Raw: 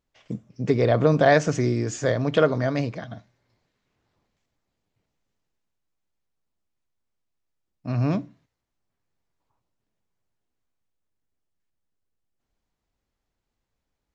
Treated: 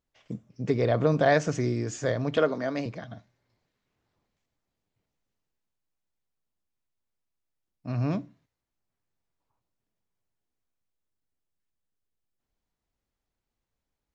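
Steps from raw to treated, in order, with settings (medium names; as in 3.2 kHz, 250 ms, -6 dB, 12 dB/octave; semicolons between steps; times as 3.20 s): 2.37–2.86 s: high-pass 180 Hz 24 dB/octave; trim -4.5 dB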